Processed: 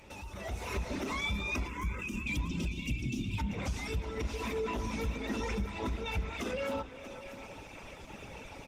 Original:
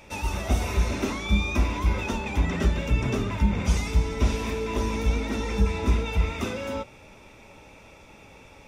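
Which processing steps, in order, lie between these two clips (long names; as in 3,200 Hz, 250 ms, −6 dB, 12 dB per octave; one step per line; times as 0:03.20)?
reverb reduction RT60 1.5 s
0:02.04–0:03.38: gain on a spectral selection 380–2,200 Hz −30 dB
in parallel at −12 dB: soft clipping −27.5 dBFS, distortion −5 dB
on the sum: downward compressor 4 to 1, threshold −35 dBFS, peak gain reduction 16 dB
far-end echo of a speakerphone 390 ms, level −15 dB
spring reverb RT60 2 s, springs 30 ms, chirp 45 ms, DRR 15.5 dB
brickwall limiter −31 dBFS, peak gain reduction 8.5 dB
on a send: single-tap delay 639 ms −12.5 dB
on the sum: automatic gain control gain up to 11 dB
0:01.68–0:02.27: phaser with its sweep stopped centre 1,700 Hz, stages 4
level −6 dB
Opus 16 kbit/s 48,000 Hz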